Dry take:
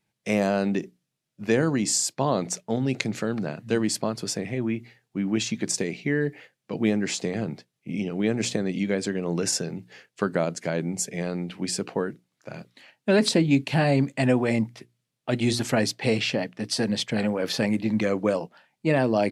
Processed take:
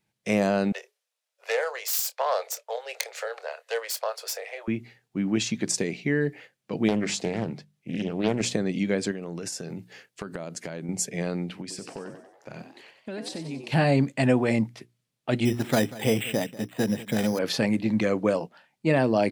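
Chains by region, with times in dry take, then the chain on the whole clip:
0:00.72–0:04.68: phase distortion by the signal itself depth 0.15 ms + Butterworth high-pass 470 Hz 72 dB per octave + double-tracking delay 26 ms −13.5 dB
0:06.88–0:08.41: mains-hum notches 50/100/150/200 Hz + highs frequency-modulated by the lows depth 0.38 ms
0:09.11–0:10.89: high-shelf EQ 10,000 Hz +7 dB + downward compressor 10 to 1, threshold −30 dBFS
0:11.61–0:13.72: downward compressor 4 to 1, threshold −35 dBFS + echo with shifted repeats 93 ms, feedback 51%, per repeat +93 Hz, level −9 dB
0:15.45–0:17.39: bad sample-rate conversion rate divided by 8×, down filtered, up hold + single-tap delay 189 ms −18 dB
whole clip: no processing

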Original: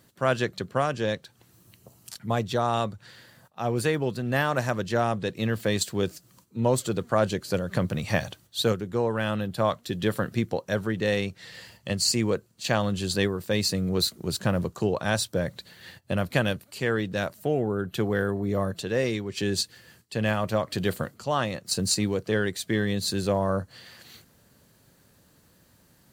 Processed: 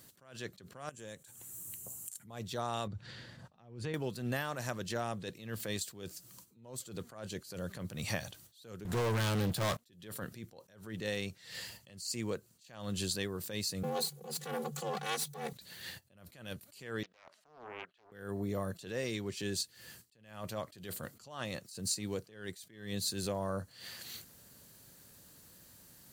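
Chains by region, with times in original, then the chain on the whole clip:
0:00.89–0:02.25: high shelf with overshoot 6,100 Hz +7.5 dB, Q 3 + downward compressor 8 to 1, threshold −40 dBFS
0:02.87–0:03.94: low-pass filter 4,500 Hz + low-shelf EQ 330 Hz +11 dB + downward compressor, threshold −28 dBFS
0:08.85–0:09.77: parametric band 110 Hz +5.5 dB 0.64 octaves + leveller curve on the samples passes 5
0:13.83–0:15.53: lower of the sound and its delayed copy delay 2.9 ms + comb filter 3.2 ms, depth 94% + frequency shifter +140 Hz
0:17.03–0:18.12: output level in coarse steps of 11 dB + band-pass filter 680–3,100 Hz + highs frequency-modulated by the lows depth 0.48 ms
whole clip: high-shelf EQ 3,900 Hz +10.5 dB; downward compressor, threshold −29 dBFS; level that may rise only so fast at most 100 dB per second; level −3 dB

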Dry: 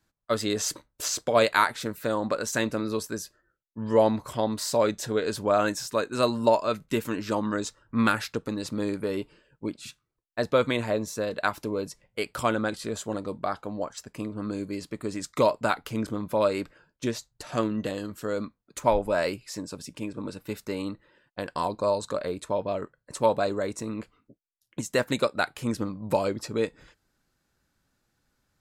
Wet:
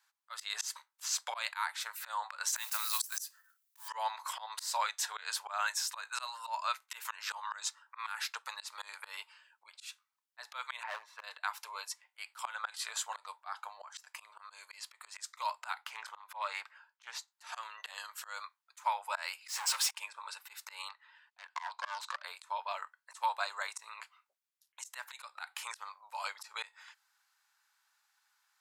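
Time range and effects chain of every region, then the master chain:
0:02.56–0:03.90: one scale factor per block 5 bits + RIAA equalisation recording
0:10.83–0:11.24: high-frequency loss of the air 490 metres + hard clipping −25 dBFS
0:15.84–0:17.28: high-shelf EQ 3,900 Hz −9.5 dB + highs frequency-modulated by the lows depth 0.11 ms
0:19.48–0:19.91: low-shelf EQ 400 Hz −8.5 dB + comb filter 7.5 ms, depth 90% + leveller curve on the samples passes 5
0:20.89–0:22.22: phase distortion by the signal itself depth 0.28 ms + gain into a clipping stage and back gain 19.5 dB + band-pass filter 620–6,100 Hz
whole clip: elliptic high-pass filter 870 Hz, stop band 70 dB; downward compressor 2 to 1, threshold −34 dBFS; volume swells 154 ms; level +3 dB

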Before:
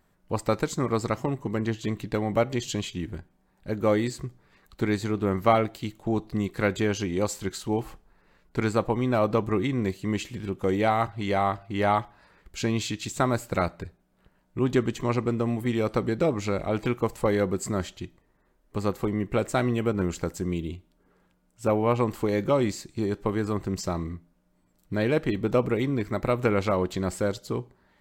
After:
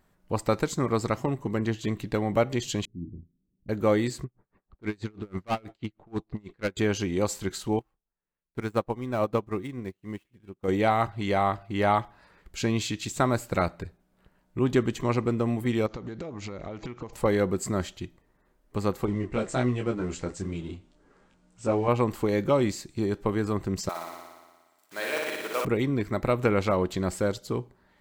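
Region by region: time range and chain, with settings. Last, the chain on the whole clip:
0:02.85–0:03.69: inverse Chebyshev low-pass filter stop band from 1,700 Hz, stop band 80 dB + spectral tilt +2 dB per octave + double-tracking delay 35 ms −7 dB
0:04.24–0:06.77: low-pass that shuts in the quiet parts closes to 930 Hz, open at −19 dBFS + hard clipping −20.5 dBFS + tremolo with a sine in dB 6.2 Hz, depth 31 dB
0:07.79–0:10.68: running median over 9 samples + high-shelf EQ 12,000 Hz +8.5 dB + expander for the loud parts 2.5 to 1, over −40 dBFS
0:15.86–0:17.13: bad sample-rate conversion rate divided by 3×, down none, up filtered + downward compressor 16 to 1, threshold −32 dBFS + highs frequency-modulated by the lows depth 0.13 ms
0:19.06–0:21.88: mu-law and A-law mismatch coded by mu + Butterworth low-pass 8,700 Hz + micro pitch shift up and down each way 12 cents
0:23.89–0:25.65: one scale factor per block 5 bits + high-pass filter 830 Hz + flutter between parallel walls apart 10.1 metres, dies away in 1.4 s
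whole clip: no processing

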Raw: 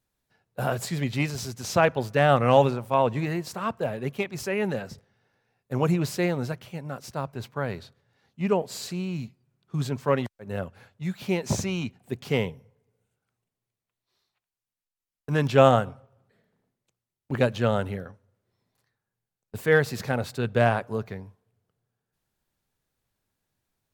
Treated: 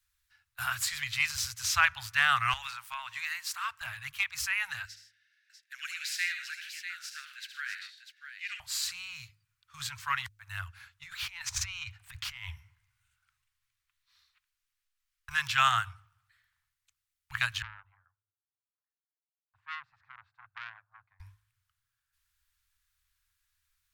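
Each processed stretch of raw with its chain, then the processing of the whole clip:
0:02.53–0:03.81: high-pass filter 860 Hz 6 dB per octave + downward compressor 10 to 1, threshold −26 dBFS
0:04.85–0:08.60: elliptic high-pass filter 1,600 Hz, stop band 50 dB + high-shelf EQ 8,700 Hz −10 dB + multi-tap delay 70/108/123/153/646 ms −8.5/−14/−14/−16/−9 dB
0:11.03–0:15.31: high-shelf EQ 5,300 Hz −7.5 dB + compressor whose output falls as the input rises −34 dBFS
0:17.62–0:21.20: four-pole ladder band-pass 350 Hz, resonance 30% + saturating transformer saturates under 1,400 Hz
whole clip: inverse Chebyshev band-stop filter 210–470 Hz, stop band 70 dB; hum removal 52.4 Hz, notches 6; level +4 dB

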